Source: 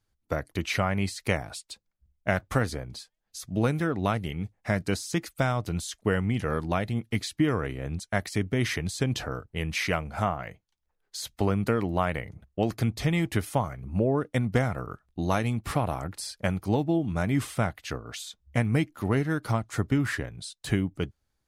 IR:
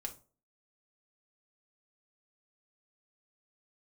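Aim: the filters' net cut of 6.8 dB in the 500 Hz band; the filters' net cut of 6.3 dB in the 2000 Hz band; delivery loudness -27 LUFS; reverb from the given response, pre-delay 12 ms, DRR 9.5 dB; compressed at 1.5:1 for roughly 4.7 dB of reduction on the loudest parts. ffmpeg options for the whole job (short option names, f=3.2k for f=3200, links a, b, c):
-filter_complex "[0:a]equalizer=f=500:t=o:g=-8.5,equalizer=f=2k:t=o:g=-7.5,acompressor=threshold=-35dB:ratio=1.5,asplit=2[a][b];[1:a]atrim=start_sample=2205,adelay=12[c];[b][c]afir=irnorm=-1:irlink=0,volume=-7.5dB[d];[a][d]amix=inputs=2:normalize=0,volume=8dB"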